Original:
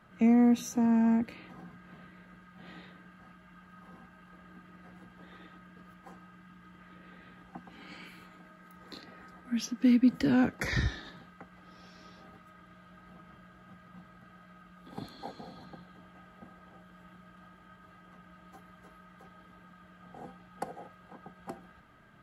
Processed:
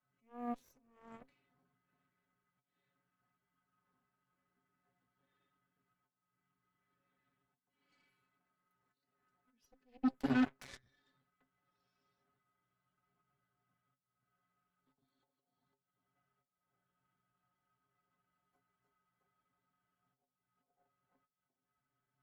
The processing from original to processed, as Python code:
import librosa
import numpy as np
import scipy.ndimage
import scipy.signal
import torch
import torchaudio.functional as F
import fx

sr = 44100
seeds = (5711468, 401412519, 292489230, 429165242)

y = fx.auto_swell(x, sr, attack_ms=385.0)
y = fx.stiff_resonator(y, sr, f0_hz=130.0, decay_s=0.2, stiffness=0.008)
y = fx.cheby_harmonics(y, sr, harmonics=(7, 8), levels_db=(-16, -29), full_scale_db=-23.0)